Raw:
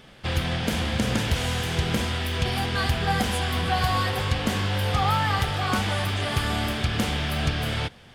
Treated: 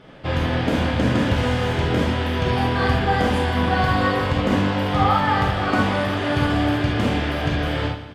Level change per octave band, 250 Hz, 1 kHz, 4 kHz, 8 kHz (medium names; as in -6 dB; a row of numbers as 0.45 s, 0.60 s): +8.0 dB, +5.5 dB, -1.0 dB, -7.0 dB